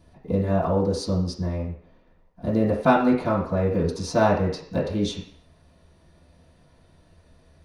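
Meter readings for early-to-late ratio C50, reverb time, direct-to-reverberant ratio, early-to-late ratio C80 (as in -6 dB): 5.5 dB, 0.55 s, -10.5 dB, 9.0 dB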